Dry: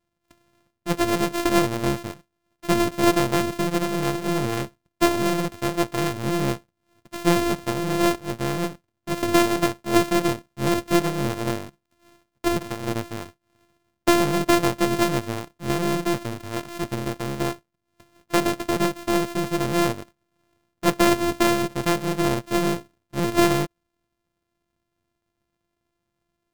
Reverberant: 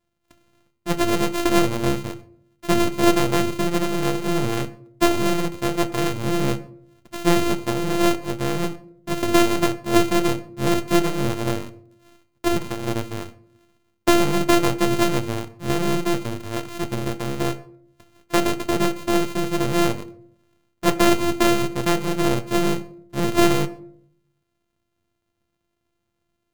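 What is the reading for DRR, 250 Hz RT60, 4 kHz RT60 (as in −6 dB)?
10.5 dB, 0.85 s, 0.35 s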